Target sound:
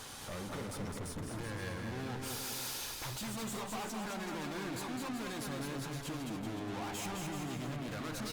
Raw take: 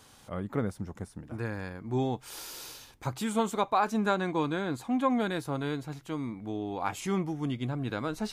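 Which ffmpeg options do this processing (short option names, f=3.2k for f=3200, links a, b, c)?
-af "lowshelf=f=450:g=-3.5,acompressor=threshold=-36dB:ratio=2.5,aeval=exprs='(tanh(501*val(0)+0.55)-tanh(0.55))/501':c=same,aecho=1:1:210|378|512.4|619.9|705.9:0.631|0.398|0.251|0.158|0.1,volume=13dB" -ar 48000 -c:a libopus -b:a 48k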